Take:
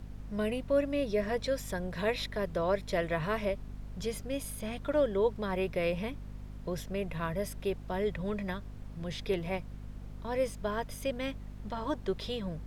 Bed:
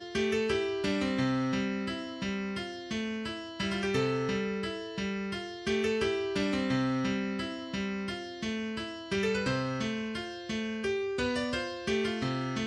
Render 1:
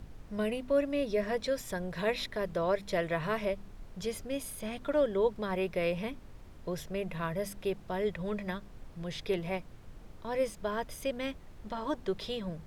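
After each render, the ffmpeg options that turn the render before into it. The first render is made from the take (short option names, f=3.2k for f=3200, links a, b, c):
-af "bandreject=f=50:t=h:w=4,bandreject=f=100:t=h:w=4,bandreject=f=150:t=h:w=4,bandreject=f=200:t=h:w=4,bandreject=f=250:t=h:w=4"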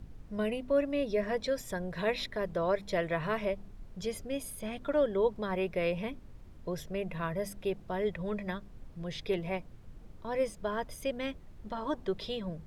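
-af "afftdn=nr=6:nf=-51"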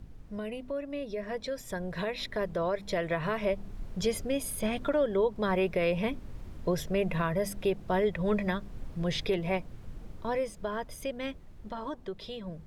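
-af "alimiter=level_in=3.5dB:limit=-24dB:level=0:latency=1:release=302,volume=-3.5dB,dynaudnorm=f=240:g=21:m=8.5dB"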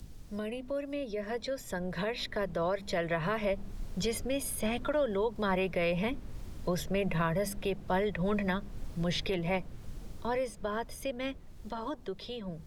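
-filter_complex "[0:a]acrossover=split=200|560|3700[a][b][c][d];[b]alimiter=level_in=8dB:limit=-24dB:level=0:latency=1,volume=-8dB[e];[d]acompressor=mode=upward:threshold=-54dB:ratio=2.5[f];[a][e][c][f]amix=inputs=4:normalize=0"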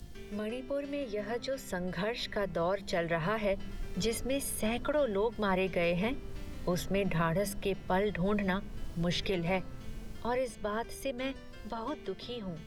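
-filter_complex "[1:a]volume=-20.5dB[a];[0:a][a]amix=inputs=2:normalize=0"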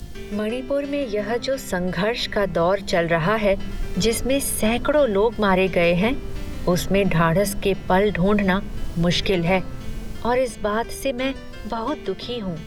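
-af "volume=12dB"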